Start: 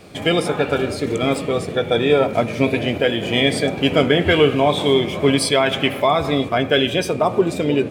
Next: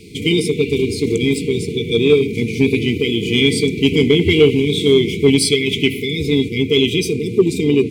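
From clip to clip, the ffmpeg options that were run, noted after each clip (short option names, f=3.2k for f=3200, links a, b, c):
-af "afftfilt=real='re*(1-between(b*sr/4096,480,2000))':imag='im*(1-between(b*sr/4096,480,2000))':win_size=4096:overlap=0.75,equalizer=f=2.8k:t=o:w=0.55:g=-2.5,acontrast=21"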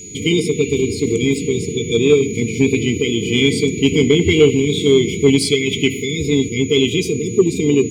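-af "highshelf=f=4.7k:g=-5.5,aeval=exprs='val(0)+0.0224*sin(2*PI*6800*n/s)':c=same"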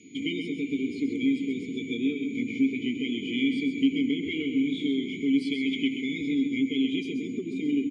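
-filter_complex "[0:a]acompressor=threshold=-17dB:ratio=4,asplit=3[a][b][c];[a]bandpass=f=270:t=q:w=8,volume=0dB[d];[b]bandpass=f=2.29k:t=q:w=8,volume=-6dB[e];[c]bandpass=f=3.01k:t=q:w=8,volume=-9dB[f];[d][e][f]amix=inputs=3:normalize=0,aecho=1:1:131|262|393:0.398|0.111|0.0312"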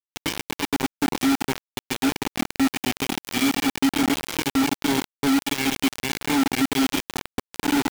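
-filter_complex "[0:a]asplit=2[a][b];[b]asoftclip=type=tanh:threshold=-27.5dB,volume=-10.5dB[c];[a][c]amix=inputs=2:normalize=0,acrusher=bits=3:mix=0:aa=0.000001,volume=1dB"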